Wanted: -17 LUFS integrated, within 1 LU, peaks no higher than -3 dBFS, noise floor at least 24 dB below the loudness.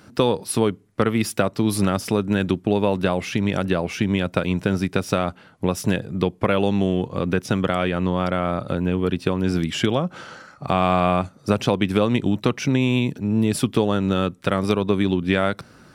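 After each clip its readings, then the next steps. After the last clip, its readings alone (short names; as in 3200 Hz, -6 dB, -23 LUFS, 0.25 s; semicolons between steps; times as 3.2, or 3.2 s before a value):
loudness -22.0 LUFS; peak -5.0 dBFS; loudness target -17.0 LUFS
-> gain +5 dB; limiter -3 dBFS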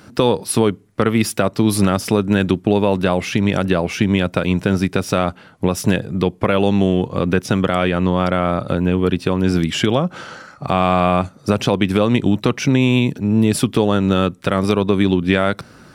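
loudness -17.5 LUFS; peak -3.0 dBFS; noise floor -46 dBFS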